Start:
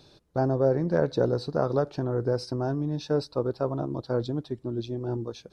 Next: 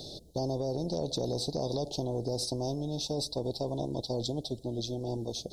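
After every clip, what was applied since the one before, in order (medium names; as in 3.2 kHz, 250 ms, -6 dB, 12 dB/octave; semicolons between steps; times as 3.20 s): elliptic band-stop 670–3800 Hz, stop band 50 dB; peak limiter -19.5 dBFS, peak gain reduction 6 dB; spectrum-flattening compressor 2:1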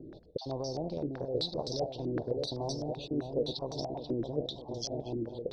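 random holes in the spectrogram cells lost 25%; two-band feedback delay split 980 Hz, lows 610 ms, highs 230 ms, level -5.5 dB; step-sequenced low-pass 7.8 Hz 320–5600 Hz; trim -5 dB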